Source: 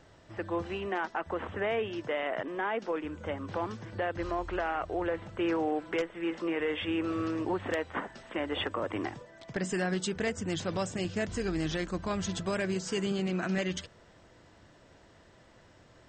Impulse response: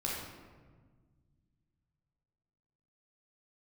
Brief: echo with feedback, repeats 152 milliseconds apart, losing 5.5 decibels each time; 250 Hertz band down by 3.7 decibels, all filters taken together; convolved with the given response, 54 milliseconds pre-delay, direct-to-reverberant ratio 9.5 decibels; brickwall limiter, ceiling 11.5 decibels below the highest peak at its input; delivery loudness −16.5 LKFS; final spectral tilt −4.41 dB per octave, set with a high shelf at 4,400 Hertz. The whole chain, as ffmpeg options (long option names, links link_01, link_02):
-filter_complex "[0:a]equalizer=frequency=250:width_type=o:gain=-6,highshelf=frequency=4400:gain=4,alimiter=level_in=6.5dB:limit=-24dB:level=0:latency=1,volume=-6.5dB,aecho=1:1:152|304|456|608|760|912|1064:0.531|0.281|0.149|0.079|0.0419|0.0222|0.0118,asplit=2[link_01][link_02];[1:a]atrim=start_sample=2205,adelay=54[link_03];[link_02][link_03]afir=irnorm=-1:irlink=0,volume=-13.5dB[link_04];[link_01][link_04]amix=inputs=2:normalize=0,volume=21.5dB"